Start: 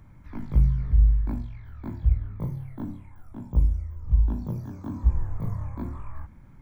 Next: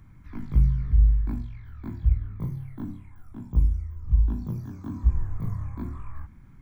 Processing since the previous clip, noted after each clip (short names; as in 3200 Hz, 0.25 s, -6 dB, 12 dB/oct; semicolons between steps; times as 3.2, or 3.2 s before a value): bell 570 Hz -9.5 dB 0.68 oct; notch 890 Hz, Q 12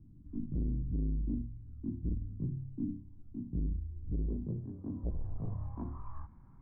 overloaded stage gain 24.5 dB; low-pass sweep 290 Hz -> 990 Hz, 3.8–6.17; gain -7 dB